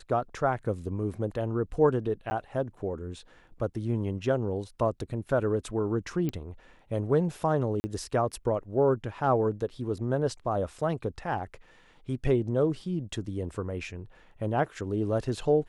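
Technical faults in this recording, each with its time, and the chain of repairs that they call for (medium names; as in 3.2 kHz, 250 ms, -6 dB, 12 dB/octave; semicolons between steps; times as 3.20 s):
2.30–2.31 s: dropout 10 ms
6.29 s: pop -19 dBFS
7.80–7.84 s: dropout 40 ms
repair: de-click; interpolate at 2.30 s, 10 ms; interpolate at 7.80 s, 40 ms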